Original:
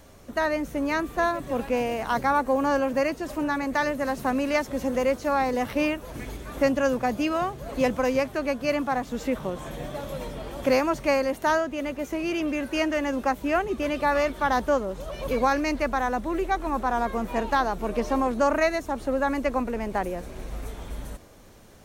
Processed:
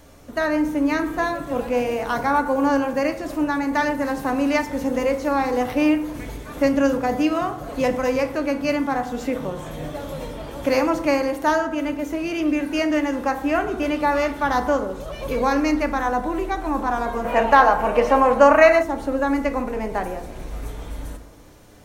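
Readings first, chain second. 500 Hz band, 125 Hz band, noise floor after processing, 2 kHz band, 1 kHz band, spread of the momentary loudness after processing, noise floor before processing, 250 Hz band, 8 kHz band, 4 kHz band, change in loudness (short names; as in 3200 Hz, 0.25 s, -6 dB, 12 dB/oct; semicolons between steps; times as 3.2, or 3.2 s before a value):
+4.5 dB, +3.0 dB, -36 dBFS, +4.5 dB, +5.0 dB, 14 LU, -44 dBFS, +5.5 dB, +2.0 dB, +2.5 dB, +5.0 dB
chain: FDN reverb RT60 0.85 s, low-frequency decay 1×, high-frequency decay 0.45×, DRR 5.5 dB; spectral gain 17.25–18.83, 470–3200 Hz +8 dB; gain +1.5 dB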